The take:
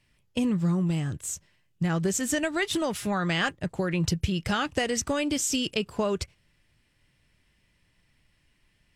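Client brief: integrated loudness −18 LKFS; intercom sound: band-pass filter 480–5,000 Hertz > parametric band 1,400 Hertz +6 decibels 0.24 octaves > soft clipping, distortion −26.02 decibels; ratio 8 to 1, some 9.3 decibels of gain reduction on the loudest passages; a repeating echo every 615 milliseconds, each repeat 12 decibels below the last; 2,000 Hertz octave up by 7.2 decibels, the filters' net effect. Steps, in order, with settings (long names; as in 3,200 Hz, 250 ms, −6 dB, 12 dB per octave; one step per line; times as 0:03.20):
parametric band 2,000 Hz +7.5 dB
downward compressor 8 to 1, threshold −28 dBFS
band-pass filter 480–5,000 Hz
parametric band 1,400 Hz +6 dB 0.24 octaves
repeating echo 615 ms, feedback 25%, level −12 dB
soft clipping −17.5 dBFS
level +17 dB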